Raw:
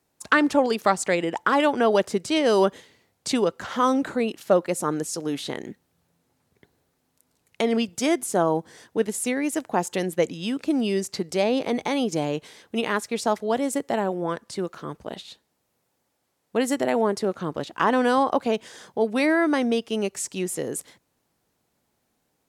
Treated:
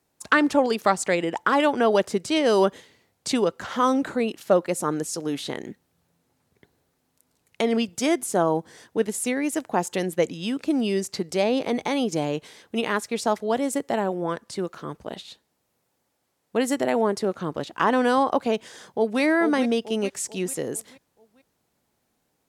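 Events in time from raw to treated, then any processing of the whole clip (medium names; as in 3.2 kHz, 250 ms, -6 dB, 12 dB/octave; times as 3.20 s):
18.70–19.21 s: echo throw 440 ms, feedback 45%, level -8 dB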